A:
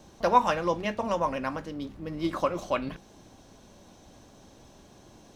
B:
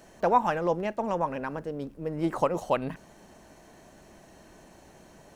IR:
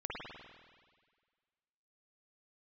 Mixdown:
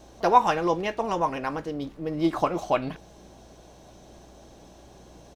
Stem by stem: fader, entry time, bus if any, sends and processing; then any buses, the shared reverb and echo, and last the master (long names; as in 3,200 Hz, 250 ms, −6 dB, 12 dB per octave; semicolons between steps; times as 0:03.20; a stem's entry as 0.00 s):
+1.5 dB, 0.00 s, no send, high-pass filter 320 Hz 24 dB per octave
+1.5 dB, 1.2 ms, no send, Chebyshev low-pass filter 820 Hz, order 5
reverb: not used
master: mains hum 60 Hz, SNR 27 dB